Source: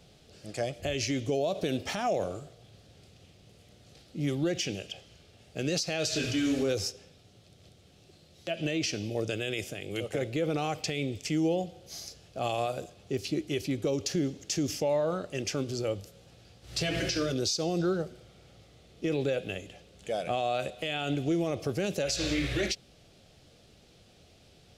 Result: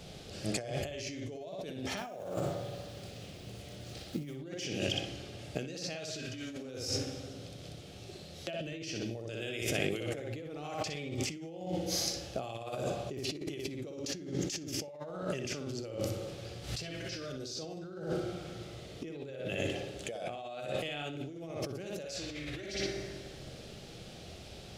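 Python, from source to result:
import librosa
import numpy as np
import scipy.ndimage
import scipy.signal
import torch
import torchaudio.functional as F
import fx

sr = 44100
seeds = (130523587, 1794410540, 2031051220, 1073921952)

y = fx.block_float(x, sr, bits=5, at=(1.97, 4.37))
y = fx.hum_notches(y, sr, base_hz=50, count=2)
y = fx.echo_filtered(y, sr, ms=61, feedback_pct=36, hz=4700.0, wet_db=-3)
y = fx.rev_fdn(y, sr, rt60_s=2.0, lf_ratio=0.95, hf_ratio=0.65, size_ms=51.0, drr_db=14.0)
y = fx.over_compress(y, sr, threshold_db=-39.0, ratio=-1.0)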